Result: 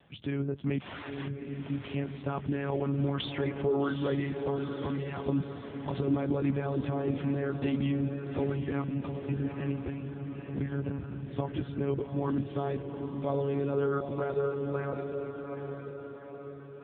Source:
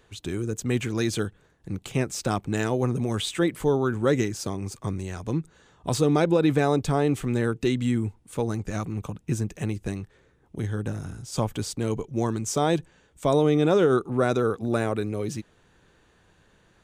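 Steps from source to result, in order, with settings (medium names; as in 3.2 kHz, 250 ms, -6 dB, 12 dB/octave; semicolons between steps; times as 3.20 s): fade out at the end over 4.88 s; 4.80–5.39 s: dynamic bell 1.1 kHz, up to +4 dB, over -49 dBFS, Q 2.5; peak limiter -20 dBFS, peak gain reduction 11.5 dB; hum notches 50/100 Hz; 0.80–1.69 s: integer overflow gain 34 dB; 13.54–14.41 s: high-pass 53 Hz 6 dB/octave; monotone LPC vocoder at 8 kHz 140 Hz; bass shelf 160 Hz +2 dB; echo that smears into a reverb 816 ms, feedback 54%, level -6 dB; AMR-NB 7.95 kbps 8 kHz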